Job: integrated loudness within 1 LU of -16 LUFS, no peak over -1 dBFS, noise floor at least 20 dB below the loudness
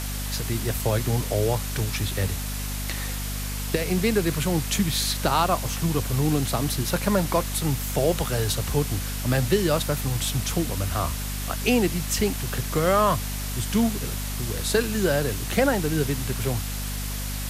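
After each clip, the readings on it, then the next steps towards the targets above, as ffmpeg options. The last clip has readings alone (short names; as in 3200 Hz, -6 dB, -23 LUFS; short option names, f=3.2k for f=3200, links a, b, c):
hum 50 Hz; harmonics up to 250 Hz; hum level -28 dBFS; noise floor -30 dBFS; noise floor target -45 dBFS; loudness -25.0 LUFS; peak -8.0 dBFS; loudness target -16.0 LUFS
-> -af "bandreject=f=50:t=h:w=4,bandreject=f=100:t=h:w=4,bandreject=f=150:t=h:w=4,bandreject=f=200:t=h:w=4,bandreject=f=250:t=h:w=4"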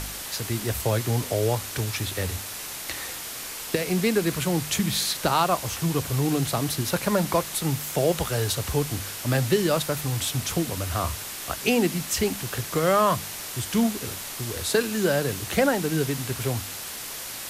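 hum none; noise floor -36 dBFS; noise floor target -46 dBFS
-> -af "afftdn=nr=10:nf=-36"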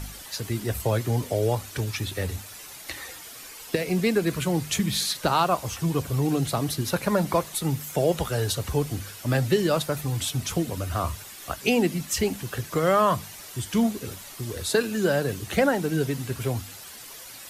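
noise floor -43 dBFS; noise floor target -46 dBFS
-> -af "afftdn=nr=6:nf=-43"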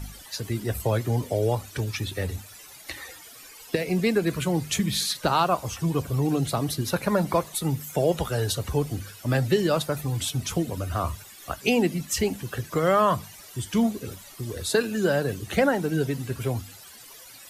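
noise floor -47 dBFS; loudness -26.0 LUFS; peak -8.5 dBFS; loudness target -16.0 LUFS
-> -af "volume=10dB,alimiter=limit=-1dB:level=0:latency=1"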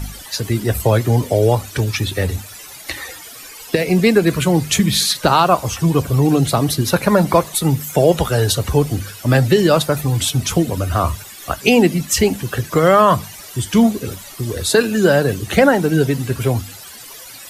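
loudness -16.5 LUFS; peak -1.0 dBFS; noise floor -37 dBFS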